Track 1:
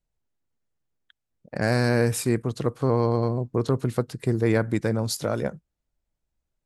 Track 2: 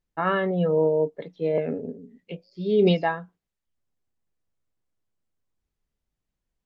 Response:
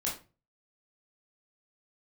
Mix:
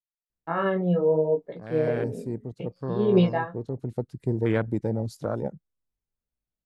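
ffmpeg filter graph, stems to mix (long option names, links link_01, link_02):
-filter_complex "[0:a]afwtdn=0.0398,highshelf=frequency=7900:gain=-9,volume=-2.5dB,afade=type=in:start_time=1.62:duration=0.35:silence=0.298538,afade=type=in:start_time=3.73:duration=0.47:silence=0.473151[link_01];[1:a]agate=range=-7dB:threshold=-50dB:ratio=16:detection=peak,highshelf=frequency=2200:gain=-11.5,flanger=delay=16:depth=6.7:speed=0.83,adelay=300,volume=2dB[link_02];[link_01][link_02]amix=inputs=2:normalize=0,highshelf=frequency=4900:gain=7"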